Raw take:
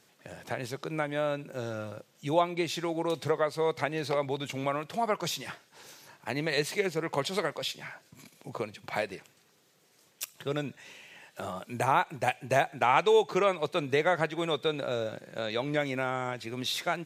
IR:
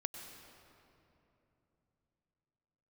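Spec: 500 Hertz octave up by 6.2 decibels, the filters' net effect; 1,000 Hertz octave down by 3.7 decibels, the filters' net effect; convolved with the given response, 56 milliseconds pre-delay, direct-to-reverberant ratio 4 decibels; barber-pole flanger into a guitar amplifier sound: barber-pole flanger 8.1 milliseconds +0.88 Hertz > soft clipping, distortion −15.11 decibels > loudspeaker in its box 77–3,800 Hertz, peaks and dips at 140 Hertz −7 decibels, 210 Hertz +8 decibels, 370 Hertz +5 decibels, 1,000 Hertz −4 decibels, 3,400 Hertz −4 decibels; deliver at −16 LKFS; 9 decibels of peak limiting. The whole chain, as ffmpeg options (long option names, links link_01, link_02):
-filter_complex "[0:a]equalizer=frequency=500:width_type=o:gain=7.5,equalizer=frequency=1000:width_type=o:gain=-7.5,alimiter=limit=-18dB:level=0:latency=1,asplit=2[link_01][link_02];[1:a]atrim=start_sample=2205,adelay=56[link_03];[link_02][link_03]afir=irnorm=-1:irlink=0,volume=-3dB[link_04];[link_01][link_04]amix=inputs=2:normalize=0,asplit=2[link_05][link_06];[link_06]adelay=8.1,afreqshift=0.88[link_07];[link_05][link_07]amix=inputs=2:normalize=1,asoftclip=threshold=-23.5dB,highpass=77,equalizer=frequency=140:width_type=q:width=4:gain=-7,equalizer=frequency=210:width_type=q:width=4:gain=8,equalizer=frequency=370:width_type=q:width=4:gain=5,equalizer=frequency=1000:width_type=q:width=4:gain=-4,equalizer=frequency=3400:width_type=q:width=4:gain=-4,lowpass=frequency=3800:width=0.5412,lowpass=frequency=3800:width=1.3066,volume=16.5dB"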